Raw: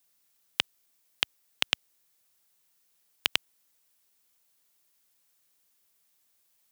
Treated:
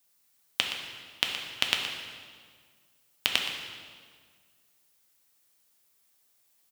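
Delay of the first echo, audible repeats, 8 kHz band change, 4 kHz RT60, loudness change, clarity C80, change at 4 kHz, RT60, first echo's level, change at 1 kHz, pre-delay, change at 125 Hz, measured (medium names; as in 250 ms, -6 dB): 120 ms, 1, +2.0 dB, 1.5 s, +0.5 dB, 4.5 dB, +2.0 dB, 1.8 s, -11.0 dB, +2.5 dB, 3 ms, +2.0 dB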